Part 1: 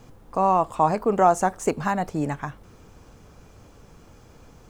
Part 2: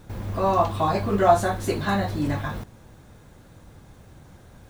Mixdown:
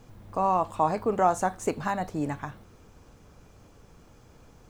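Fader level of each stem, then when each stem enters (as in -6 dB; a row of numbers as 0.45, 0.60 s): -4.5, -18.0 dB; 0.00, 0.00 s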